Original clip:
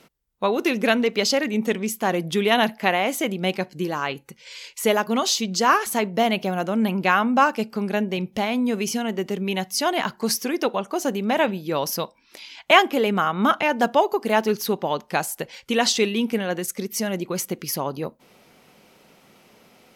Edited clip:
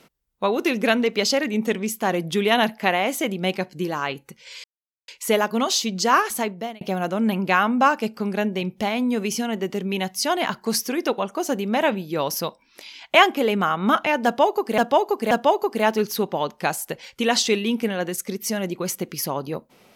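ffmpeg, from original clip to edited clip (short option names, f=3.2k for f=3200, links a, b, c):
-filter_complex "[0:a]asplit=5[a][b][c][d][e];[a]atrim=end=4.64,asetpts=PTS-STARTPTS,afade=t=out:st=4.636:d=0.004:c=hsin,apad=pad_dur=0.44[f];[b]atrim=start=4.64:end=6.37,asetpts=PTS-STARTPTS,afade=t=in:d=0.004:c=hsin,afade=t=out:st=1.24:d=0.49[g];[c]atrim=start=6.37:end=14.342,asetpts=PTS-STARTPTS,afade=t=in:d=0.004:c=hsin[h];[d]atrim=start=13.808:end=14.342[i];[e]atrim=start=13.808[j];[f][g][h]concat=n=3:v=0:a=1[k];[k][i]acrossfade=d=0.004:c1=hsin:c2=hsin[l];[l][j]acrossfade=d=0.004:c1=hsin:c2=hsin"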